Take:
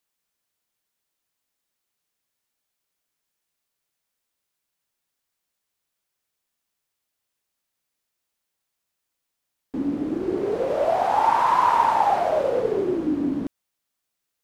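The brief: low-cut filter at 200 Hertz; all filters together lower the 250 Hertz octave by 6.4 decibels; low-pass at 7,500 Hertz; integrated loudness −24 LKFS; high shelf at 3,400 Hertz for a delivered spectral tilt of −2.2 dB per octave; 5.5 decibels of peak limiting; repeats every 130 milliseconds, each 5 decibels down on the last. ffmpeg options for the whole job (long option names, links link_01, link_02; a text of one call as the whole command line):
ffmpeg -i in.wav -af "highpass=200,lowpass=7500,equalizer=frequency=250:width_type=o:gain=-7.5,highshelf=frequency=3400:gain=7,alimiter=limit=-12.5dB:level=0:latency=1,aecho=1:1:130|260|390|520|650|780|910:0.562|0.315|0.176|0.0988|0.0553|0.031|0.0173,volume=-2dB" out.wav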